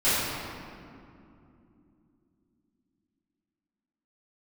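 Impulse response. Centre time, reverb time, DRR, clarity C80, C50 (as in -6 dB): 0.153 s, 2.7 s, -17.0 dB, -1.5 dB, -3.5 dB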